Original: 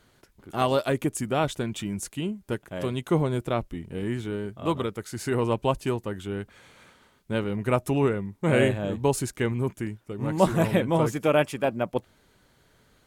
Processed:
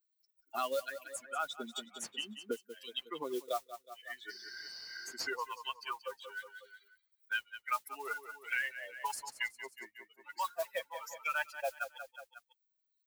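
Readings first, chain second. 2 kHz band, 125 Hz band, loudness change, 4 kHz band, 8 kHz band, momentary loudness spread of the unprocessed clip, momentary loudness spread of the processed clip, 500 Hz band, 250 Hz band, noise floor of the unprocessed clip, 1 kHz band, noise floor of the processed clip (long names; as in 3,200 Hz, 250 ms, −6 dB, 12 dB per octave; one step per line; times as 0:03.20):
−3.5 dB, below −40 dB, −13.0 dB, −4.5 dB, −8.0 dB, 11 LU, 14 LU, −17.0 dB, −25.0 dB, −63 dBFS, −9.0 dB, −82 dBFS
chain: spectral dynamics exaggerated over time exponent 3
dynamic equaliser 1,500 Hz, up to +6 dB, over −50 dBFS, Q 2.4
reversed playback
downward compressor 6 to 1, threshold −36 dBFS, peak gain reduction 17 dB
reversed playback
high-pass filter sweep 240 Hz → 830 Hz, 0:03.15–0:03.80
parametric band 780 Hz −8 dB 0.29 octaves
healed spectral selection 0:04.32–0:05.12, 280–6,100 Hz after
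auto-filter high-pass sine 1.1 Hz 460–3,300 Hz
noise that follows the level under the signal 21 dB
on a send: repeating echo 182 ms, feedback 34%, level −14.5 dB
on the sum: multiband upward and downward compressor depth 100%
level +3.5 dB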